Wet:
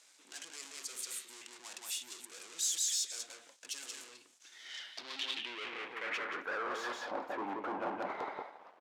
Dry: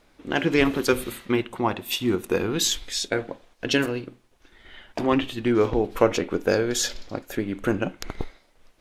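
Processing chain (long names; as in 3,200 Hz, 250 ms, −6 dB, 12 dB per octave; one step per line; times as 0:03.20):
high-pass filter 190 Hz 12 dB per octave
high-shelf EQ 4,200 Hz −7.5 dB
single-tap delay 180 ms −8 dB
reversed playback
downward compressor, threshold −28 dBFS, peak gain reduction 15 dB
reversed playback
gain into a clipping stage and back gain 30.5 dB
leveller curve on the samples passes 3
band-pass filter sweep 7,500 Hz → 880 Hz, 0:04.32–0:07.13
level +6 dB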